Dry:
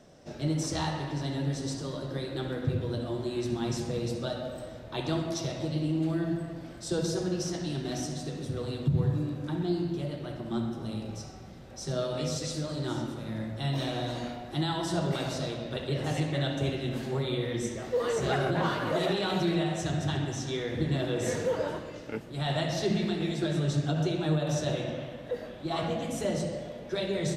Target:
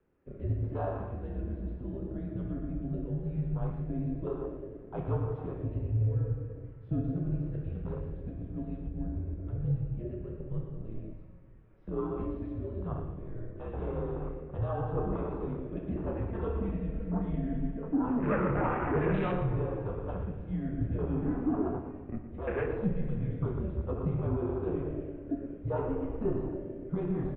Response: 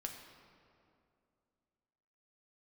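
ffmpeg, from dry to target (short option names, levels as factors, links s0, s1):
-filter_complex "[0:a]afwtdn=0.0178,asettb=1/sr,asplit=3[s0][s1][s2];[s0]atrim=end=16.284[s3];[s1]atrim=start=16.28:end=17.93,asetpts=PTS-STARTPTS,afade=t=in:d=0.004:c=qsin,afade=t=out:st=1.646:d=0.004:c=qsin,aecho=1:1:4.5:0.59,atrim=end_sample=72765[s4];[s2]atrim=start=17.926[s5];[s3][s4]acrossfade=d=0.004:c1=hsin:c2=qsin[s6];[s6][s5]acrossfade=d=0.004:c1=qsin:c2=hsin,aecho=1:1:116:0.282,asplit=2[s7][s8];[1:a]atrim=start_sample=2205,adelay=28[s9];[s8][s9]afir=irnorm=-1:irlink=0,volume=0.531[s10];[s7][s10]amix=inputs=2:normalize=0,highpass=f=220:t=q:w=0.5412,highpass=f=220:t=q:w=1.307,lowpass=f=2600:t=q:w=0.5176,lowpass=f=2600:t=q:w=0.7071,lowpass=f=2600:t=q:w=1.932,afreqshift=-210"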